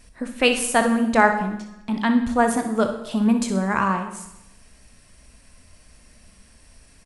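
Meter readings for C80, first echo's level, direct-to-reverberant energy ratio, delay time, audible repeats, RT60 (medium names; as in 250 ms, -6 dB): 11.0 dB, -11.0 dB, 5.5 dB, 62 ms, 1, 0.85 s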